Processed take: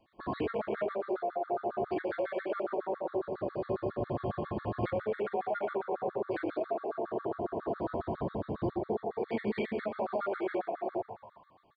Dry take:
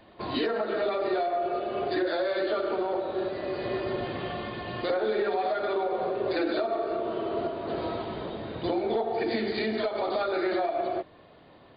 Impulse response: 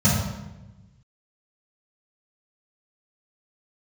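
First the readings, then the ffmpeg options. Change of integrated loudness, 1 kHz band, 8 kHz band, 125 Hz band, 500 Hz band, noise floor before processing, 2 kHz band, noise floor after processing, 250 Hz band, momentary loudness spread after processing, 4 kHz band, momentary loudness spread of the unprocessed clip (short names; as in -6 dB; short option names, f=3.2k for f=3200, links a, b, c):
-5.5 dB, -5.0 dB, n/a, +1.0 dB, -5.5 dB, -54 dBFS, -8.0 dB, -63 dBFS, -4.5 dB, 3 LU, under -15 dB, 6 LU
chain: -filter_complex "[0:a]afwtdn=0.0158,acompressor=threshold=-33dB:ratio=5,asplit=7[a][b][c][d][e][f][g];[b]adelay=120,afreqshift=80,volume=-13dB[h];[c]adelay=240,afreqshift=160,volume=-17.7dB[i];[d]adelay=360,afreqshift=240,volume=-22.5dB[j];[e]adelay=480,afreqshift=320,volume=-27.2dB[k];[f]adelay=600,afreqshift=400,volume=-31.9dB[l];[g]adelay=720,afreqshift=480,volume=-36.7dB[m];[a][h][i][j][k][l][m]amix=inputs=7:normalize=0,asplit=2[n][o];[1:a]atrim=start_sample=2205,adelay=40[p];[o][p]afir=irnorm=-1:irlink=0,volume=-34.5dB[q];[n][q]amix=inputs=2:normalize=0,afftfilt=real='re*gt(sin(2*PI*7.3*pts/sr)*(1-2*mod(floor(b*sr/1024/1100),2)),0)':imag='im*gt(sin(2*PI*7.3*pts/sr)*(1-2*mod(floor(b*sr/1024/1100),2)),0)':win_size=1024:overlap=0.75,volume=4dB"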